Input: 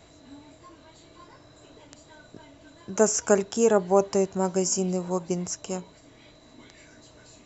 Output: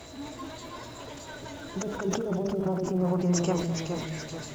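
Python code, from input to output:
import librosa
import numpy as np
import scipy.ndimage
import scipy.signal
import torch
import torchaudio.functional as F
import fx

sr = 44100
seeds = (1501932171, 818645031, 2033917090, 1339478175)

y = fx.law_mismatch(x, sr, coded='mu')
y = fx.env_lowpass_down(y, sr, base_hz=550.0, full_db=-18.5)
y = fx.hum_notches(y, sr, base_hz=50, count=7)
y = fx.over_compress(y, sr, threshold_db=-28.0, ratio=-1.0)
y = fx.dmg_crackle(y, sr, seeds[0], per_s=170.0, level_db=-42.0)
y = fx.stretch_vocoder(y, sr, factor=0.61)
y = fx.echo_pitch(y, sr, ms=212, semitones=-1, count=3, db_per_echo=-6.0)
y = y + 10.0 ** (-13.5 / 20.0) * np.pad(y, (int(210 * sr / 1000.0), 0))[:len(y)]
y = fx.sustainer(y, sr, db_per_s=45.0)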